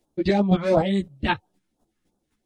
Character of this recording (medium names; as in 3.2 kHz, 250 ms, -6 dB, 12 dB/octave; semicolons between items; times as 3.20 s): phasing stages 2, 2.9 Hz, lowest notch 630–2000 Hz; chopped level 3.9 Hz, depth 60%, duty 15%; a shimmering, thickened sound